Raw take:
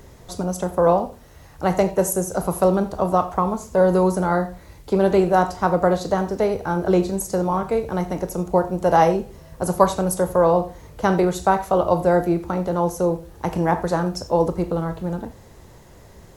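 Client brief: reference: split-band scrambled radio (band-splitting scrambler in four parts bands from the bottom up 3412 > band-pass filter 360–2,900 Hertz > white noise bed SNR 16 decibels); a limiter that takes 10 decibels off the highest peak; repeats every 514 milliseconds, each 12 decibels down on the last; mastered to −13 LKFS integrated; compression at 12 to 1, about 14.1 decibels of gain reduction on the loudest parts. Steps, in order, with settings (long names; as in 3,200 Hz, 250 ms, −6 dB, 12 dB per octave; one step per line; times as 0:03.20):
downward compressor 12 to 1, threshold −24 dBFS
brickwall limiter −22 dBFS
repeating echo 514 ms, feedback 25%, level −12 dB
band-splitting scrambler in four parts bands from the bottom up 3412
band-pass filter 360–2,900 Hz
white noise bed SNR 16 dB
level +20 dB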